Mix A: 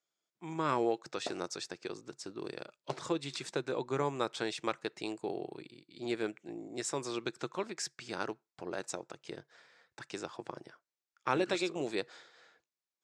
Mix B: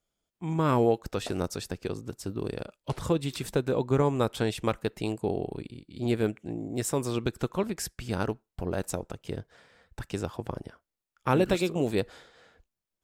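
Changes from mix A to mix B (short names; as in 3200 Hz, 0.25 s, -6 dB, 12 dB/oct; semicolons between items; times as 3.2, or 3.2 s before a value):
speech: remove HPF 1300 Hz 6 dB/oct; master: remove speaker cabinet 110–7300 Hz, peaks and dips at 140 Hz +8 dB, 340 Hz +7 dB, 3000 Hz -5 dB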